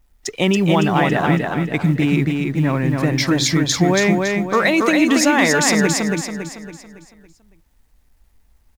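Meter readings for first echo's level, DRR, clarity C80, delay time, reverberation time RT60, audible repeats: −3.5 dB, no reverb audible, no reverb audible, 279 ms, no reverb audible, 5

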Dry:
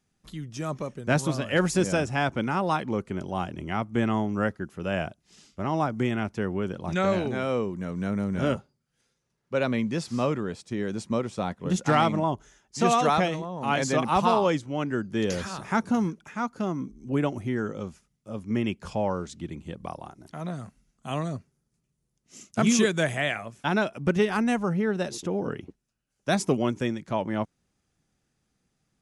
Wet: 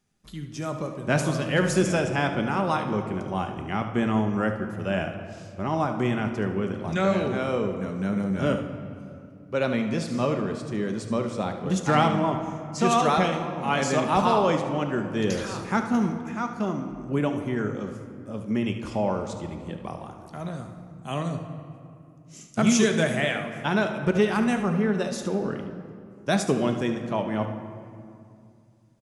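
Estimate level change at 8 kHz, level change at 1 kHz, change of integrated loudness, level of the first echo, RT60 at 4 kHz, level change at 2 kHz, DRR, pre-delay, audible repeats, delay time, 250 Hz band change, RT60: +1.0 dB, +1.0 dB, +1.5 dB, −11.5 dB, 1.4 s, +1.0 dB, 5.0 dB, 5 ms, 1, 73 ms, +2.0 dB, 2.4 s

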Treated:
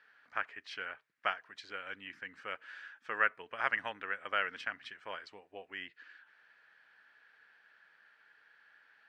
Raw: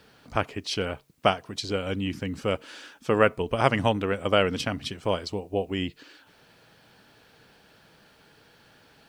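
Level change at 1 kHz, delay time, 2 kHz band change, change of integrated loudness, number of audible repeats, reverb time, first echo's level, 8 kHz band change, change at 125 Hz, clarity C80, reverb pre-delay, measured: −10.0 dB, no echo audible, −3.0 dB, −11.0 dB, no echo audible, no reverb audible, no echo audible, below −20 dB, below −30 dB, no reverb audible, no reverb audible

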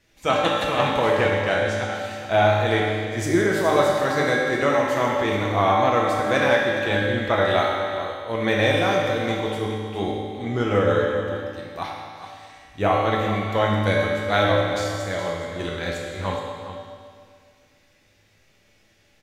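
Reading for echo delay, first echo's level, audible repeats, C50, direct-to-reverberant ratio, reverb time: 419 ms, −11.0 dB, 1, −1.0 dB, −4.0 dB, 2.1 s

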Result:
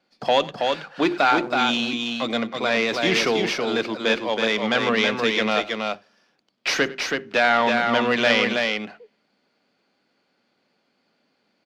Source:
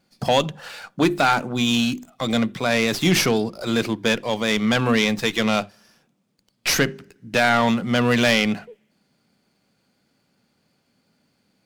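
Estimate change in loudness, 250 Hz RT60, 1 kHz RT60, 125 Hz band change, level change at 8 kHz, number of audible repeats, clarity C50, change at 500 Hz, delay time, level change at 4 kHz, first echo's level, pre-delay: −1.0 dB, no reverb audible, no reverb audible, −11.0 dB, −7.0 dB, 2, no reverb audible, +1.0 dB, 96 ms, 0.0 dB, −19.5 dB, no reverb audible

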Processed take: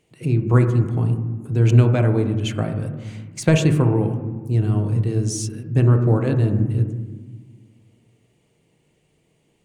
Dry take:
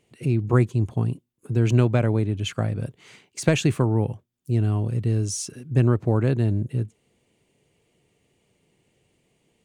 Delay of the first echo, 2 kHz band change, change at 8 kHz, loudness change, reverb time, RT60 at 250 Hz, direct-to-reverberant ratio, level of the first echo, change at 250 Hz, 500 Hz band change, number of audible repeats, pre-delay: no echo audible, +1.5 dB, +1.0 dB, +4.0 dB, 1.4 s, 2.0 s, 5.5 dB, no echo audible, +3.5 dB, +3.0 dB, no echo audible, 6 ms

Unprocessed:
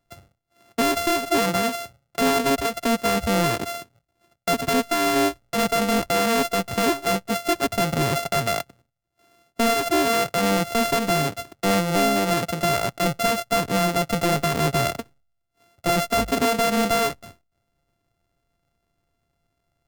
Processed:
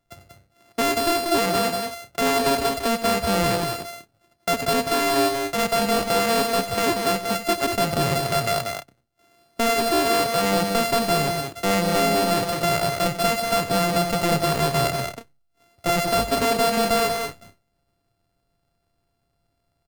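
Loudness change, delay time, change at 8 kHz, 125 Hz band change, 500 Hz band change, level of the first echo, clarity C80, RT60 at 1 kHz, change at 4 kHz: +0.5 dB, 91 ms, +0.5 dB, 0.0 dB, +1.0 dB, −12.5 dB, no reverb audible, no reverb audible, +2.0 dB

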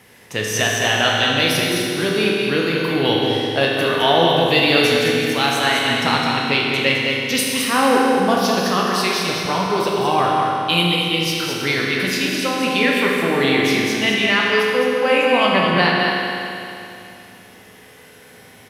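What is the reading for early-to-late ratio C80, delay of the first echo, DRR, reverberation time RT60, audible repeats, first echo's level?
−1.5 dB, 211 ms, −4.5 dB, 2.8 s, 1, −5.0 dB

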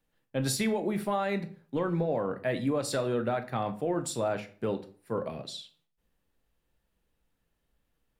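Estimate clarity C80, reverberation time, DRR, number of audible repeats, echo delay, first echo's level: 19.0 dB, 0.45 s, 8.0 dB, no echo audible, no echo audible, no echo audible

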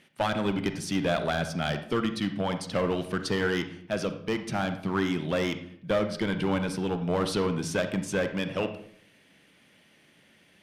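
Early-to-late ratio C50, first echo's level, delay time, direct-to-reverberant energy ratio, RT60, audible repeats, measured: 10.0 dB, no echo audible, no echo audible, 8.5 dB, 0.65 s, no echo audible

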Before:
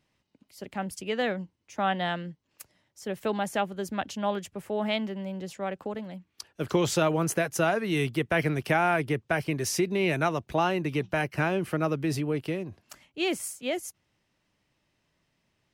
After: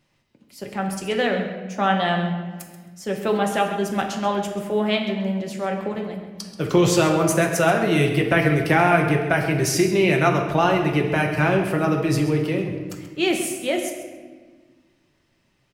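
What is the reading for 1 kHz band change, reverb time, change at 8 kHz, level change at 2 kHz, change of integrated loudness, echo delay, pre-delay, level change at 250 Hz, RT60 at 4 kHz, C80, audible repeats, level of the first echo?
+7.5 dB, 1.5 s, +6.5 dB, +7.5 dB, +7.5 dB, 133 ms, 5 ms, +8.5 dB, 0.95 s, 7.0 dB, 1, −12.5 dB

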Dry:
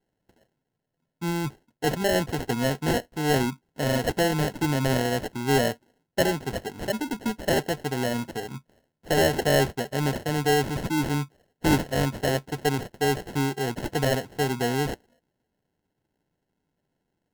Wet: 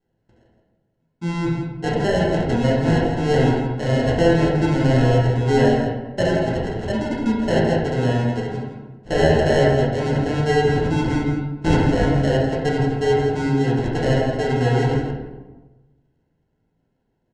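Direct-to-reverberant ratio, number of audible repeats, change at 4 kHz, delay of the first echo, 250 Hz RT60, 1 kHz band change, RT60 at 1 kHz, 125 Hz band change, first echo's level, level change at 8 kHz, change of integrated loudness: −5.5 dB, 1, 0.0 dB, 165 ms, 1.4 s, +4.5 dB, 1.1 s, +9.5 dB, −7.5 dB, −5.5 dB, +6.5 dB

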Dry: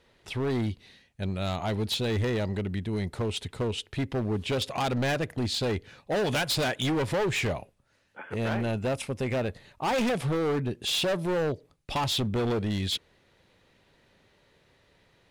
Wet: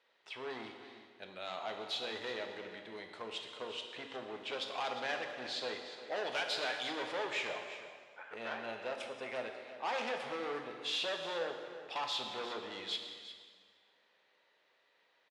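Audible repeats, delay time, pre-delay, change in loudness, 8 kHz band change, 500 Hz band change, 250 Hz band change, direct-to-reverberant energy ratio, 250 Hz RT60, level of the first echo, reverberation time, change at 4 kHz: 1, 356 ms, 7 ms, −10.5 dB, −14.0 dB, −11.0 dB, −19.5 dB, 3.0 dB, 1.7 s, −13.5 dB, 1.7 s, −7.0 dB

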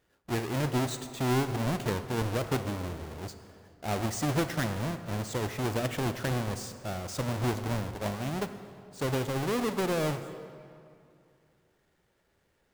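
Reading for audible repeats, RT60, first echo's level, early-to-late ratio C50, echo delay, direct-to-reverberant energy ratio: no echo audible, 2.5 s, no echo audible, 10.0 dB, no echo audible, 9.5 dB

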